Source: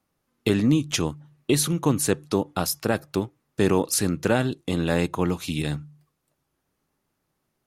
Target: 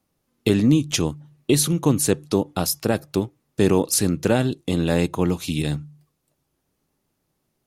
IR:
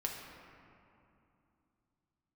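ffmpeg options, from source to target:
-af "equalizer=frequency=1400:width_type=o:width=1.6:gain=-5.5,volume=3.5dB"

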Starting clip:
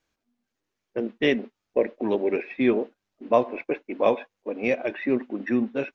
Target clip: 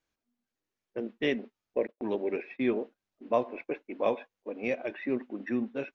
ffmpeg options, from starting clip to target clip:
ffmpeg -i in.wav -filter_complex "[0:a]asettb=1/sr,asplit=3[link_01][link_02][link_03];[link_01]atrim=end=1.874[link_04];[link_02]atrim=start=1.87:end=2.76,asetpts=PTS-STARTPTS,afade=type=in:duration=0.004:curve=qsin,afade=type=out:start_time=0.886:duration=0.004:curve=qsin,agate=range=-26dB:threshold=-39dB:ratio=16:detection=peak[link_05];[link_03]atrim=start=2.756[link_06];[link_04][link_05]acrossfade=duration=0.004:curve1=hsin:curve2=qsin[link_07];[link_07][link_06]acrossfade=duration=0.004:curve1=qsin:curve2=hsin,volume=-7dB" out.wav

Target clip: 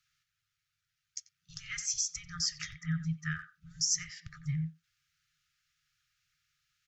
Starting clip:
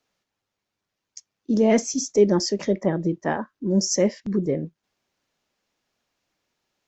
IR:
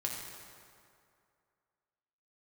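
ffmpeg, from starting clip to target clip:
-filter_complex "[0:a]acrossover=split=310[link_01][link_02];[link_02]acompressor=threshold=-29dB:ratio=2[link_03];[link_01][link_03]amix=inputs=2:normalize=0,afftfilt=real='re*(1-between(b*sr/4096,170,1200))':imag='im*(1-between(b*sr/4096,170,1200))':win_size=4096:overlap=0.75,asplit=2[link_04][link_05];[link_05]adelay=90,highpass=300,lowpass=3400,asoftclip=type=hard:threshold=-28.5dB,volume=-13dB[link_06];[link_04][link_06]amix=inputs=2:normalize=0"

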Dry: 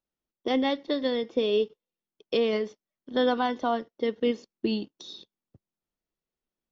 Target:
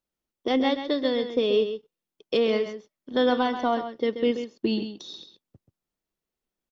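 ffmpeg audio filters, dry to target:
ffmpeg -i in.wav -af "acontrast=69,aecho=1:1:132:0.335,volume=-4.5dB" out.wav

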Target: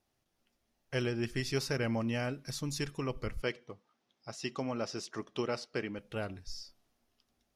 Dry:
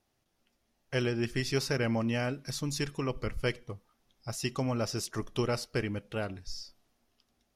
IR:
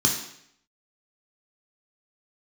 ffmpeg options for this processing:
-filter_complex "[0:a]asettb=1/sr,asplit=3[link_01][link_02][link_03];[link_01]atrim=end=3.424[link_04];[link_02]atrim=start=3.42:end=5.99,asetpts=PTS-STARTPTS,afade=type=in:duration=0.004:curve=qsin,afade=type=out:start_time=2.566:duration=0.004:curve=qsin,highpass=190,lowpass=5700[link_05];[link_03]atrim=start=5.986[link_06];[link_04][link_05]acrossfade=duration=0.004:curve1=hsin:curve2=qsin[link_07];[link_07][link_06]acrossfade=duration=0.004:curve1=qsin:curve2=hsin,volume=-3dB"

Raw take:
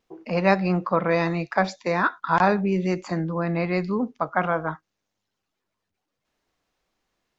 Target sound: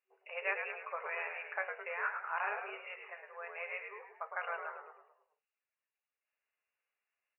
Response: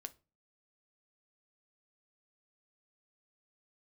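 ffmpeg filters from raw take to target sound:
-filter_complex "[0:a]aderivative[link_01];[1:a]atrim=start_sample=2205,asetrate=83790,aresample=44100[link_02];[link_01][link_02]afir=irnorm=-1:irlink=0,flanger=delay=2.4:depth=8.8:regen=-79:speed=0.29:shape=sinusoidal,asplit=7[link_03][link_04][link_05][link_06][link_07][link_08][link_09];[link_04]adelay=106,afreqshift=-83,volume=-6dB[link_10];[link_05]adelay=212,afreqshift=-166,volume=-12dB[link_11];[link_06]adelay=318,afreqshift=-249,volume=-18dB[link_12];[link_07]adelay=424,afreqshift=-332,volume=-24.1dB[link_13];[link_08]adelay=530,afreqshift=-415,volume=-30.1dB[link_14];[link_09]adelay=636,afreqshift=-498,volume=-36.1dB[link_15];[link_03][link_10][link_11][link_12][link_13][link_14][link_15]amix=inputs=7:normalize=0,afftfilt=real='re*between(b*sr/4096,380,2900)':imag='im*between(b*sr/4096,380,2900)':win_size=4096:overlap=0.75,equalizer=frequency=950:width_type=o:width=0.67:gain=-3,volume=16.5dB"

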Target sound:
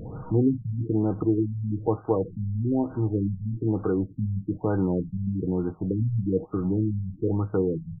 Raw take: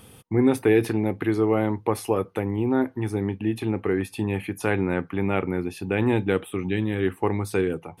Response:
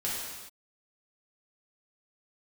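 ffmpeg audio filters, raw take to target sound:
-filter_complex "[0:a]aeval=exprs='val(0)+0.5*0.0168*sgn(val(0))':channel_layout=same,lowshelf=frequency=170:gain=7,aecho=1:1:6.4:0.37,asplit=2[link_01][link_02];[link_02]acompressor=threshold=-33dB:ratio=6,volume=-1dB[link_03];[link_01][link_03]amix=inputs=2:normalize=0,afftfilt=real='re*lt(b*sr/1024,200*pow(1600/200,0.5+0.5*sin(2*PI*1.1*pts/sr)))':imag='im*lt(b*sr/1024,200*pow(1600/200,0.5+0.5*sin(2*PI*1.1*pts/sr)))':win_size=1024:overlap=0.75,volume=-4.5dB"

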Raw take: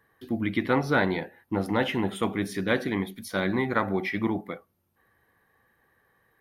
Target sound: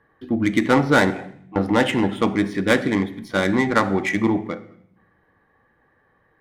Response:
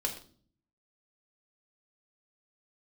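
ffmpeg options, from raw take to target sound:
-filter_complex "[0:a]adynamicsmooth=sensitivity=2:basefreq=2000,asettb=1/sr,asplit=3[link_01][link_02][link_03];[link_01]atrim=end=1.104[link_04];[link_02]atrim=start=1.1:end=1.56,asetpts=PTS-STARTPTS,afade=type=in:duration=0.004:curve=qsin,afade=type=out:start_time=0.456:duration=0.004:curve=qsin,asplit=3[link_05][link_06][link_07];[link_05]bandpass=frequency=730:width_type=q:width=8,volume=0dB[link_08];[link_06]bandpass=frequency=1090:width_type=q:width=8,volume=-6dB[link_09];[link_07]bandpass=frequency=2440:width_type=q:width=8,volume=-9dB[link_10];[link_08][link_09][link_10]amix=inputs=3:normalize=0[link_11];[link_03]atrim=start=1.556[link_12];[link_04][link_11]acrossfade=duration=0.004:curve1=hsin:curve2=qsin[link_13];[link_13][link_12]acrossfade=duration=0.004:curve1=qsin:curve2=hsin,aemphasis=mode=production:type=50fm,asplit=2[link_14][link_15];[1:a]atrim=start_sample=2205,asetrate=25578,aresample=44100[link_16];[link_15][link_16]afir=irnorm=-1:irlink=0,volume=-15dB[link_17];[link_14][link_17]amix=inputs=2:normalize=0,volume=5.5dB"

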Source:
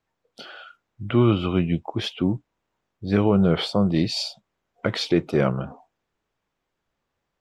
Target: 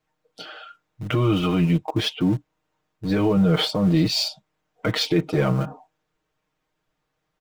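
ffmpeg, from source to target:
ffmpeg -i in.wav -filter_complex "[0:a]asplit=2[link_01][link_02];[link_02]aeval=exprs='val(0)*gte(abs(val(0)),0.0447)':channel_layout=same,volume=-10dB[link_03];[link_01][link_03]amix=inputs=2:normalize=0,alimiter=limit=-13.5dB:level=0:latency=1:release=10,aecho=1:1:6.5:0.86" out.wav

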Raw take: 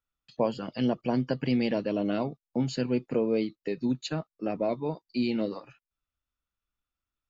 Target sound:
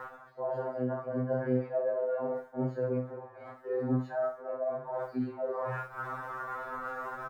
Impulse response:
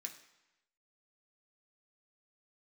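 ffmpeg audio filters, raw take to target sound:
-filter_complex "[0:a]aeval=exprs='val(0)+0.5*0.0119*sgn(val(0))':channel_layout=same,firequalizer=gain_entry='entry(120,0);entry(200,-8);entry(450,8);entry(1100,2);entry(1700,1);entry(2600,-23)':delay=0.05:min_phase=1,flanger=delay=19.5:depth=5.5:speed=0.44,highpass=frequency=91:poles=1,acompressor=mode=upward:threshold=-44dB:ratio=2.5,equalizer=frequency=1000:width=0.38:gain=10,asplit=2[link_01][link_02];[link_02]adelay=24,volume=-8dB[link_03];[link_01][link_03]amix=inputs=2:normalize=0,asplit=2[link_04][link_05];[link_05]aecho=0:1:63|126|189:0.398|0.111|0.0312[link_06];[link_04][link_06]amix=inputs=2:normalize=0,agate=range=-33dB:threshold=-39dB:ratio=3:detection=peak,areverse,acompressor=threshold=-38dB:ratio=5,areverse,afftfilt=real='re*2.45*eq(mod(b,6),0)':imag='im*2.45*eq(mod(b,6),0)':win_size=2048:overlap=0.75,volume=8dB"

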